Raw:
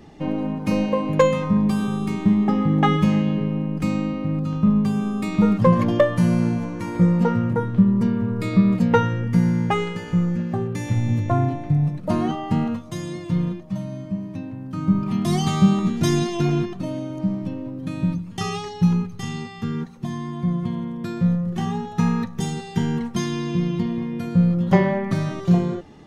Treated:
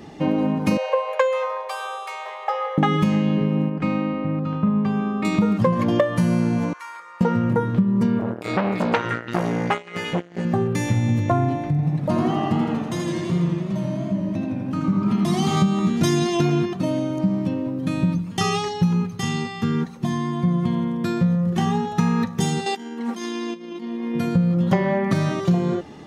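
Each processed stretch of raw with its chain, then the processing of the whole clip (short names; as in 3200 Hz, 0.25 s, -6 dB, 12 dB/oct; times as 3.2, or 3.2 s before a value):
0.77–2.78 steep high-pass 480 Hz 96 dB/oct + high shelf 3500 Hz -8 dB + core saturation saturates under 920 Hz
3.69–5.25 LPF 2300 Hz + low shelf 420 Hz -6.5 dB
6.73–7.21 compressor 2:1, threshold -22 dBFS + ladder high-pass 1000 Hz, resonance 50%
8.19–10.45 low shelf 220 Hz -6.5 dB + delay with a stepping band-pass 0.169 s, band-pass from 2000 Hz, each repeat 0.7 oct, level -3 dB + core saturation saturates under 1500 Hz
11.7–15.57 high shelf 5900 Hz -4 dB + compressor 1.5:1, threshold -30 dBFS + warbling echo 83 ms, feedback 71%, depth 116 cents, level -6 dB
22.66–24.15 negative-ratio compressor -33 dBFS + brick-wall FIR high-pass 200 Hz
whole clip: HPF 130 Hz 6 dB/oct; compressor, threshold -22 dBFS; gain +6.5 dB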